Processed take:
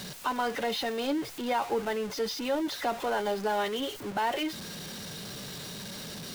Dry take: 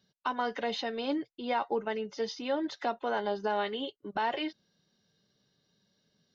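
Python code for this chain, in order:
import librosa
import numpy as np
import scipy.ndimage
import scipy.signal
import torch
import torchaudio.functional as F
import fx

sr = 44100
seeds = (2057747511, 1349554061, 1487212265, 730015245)

y = x + 0.5 * 10.0 ** (-34.5 / 20.0) * np.sign(x)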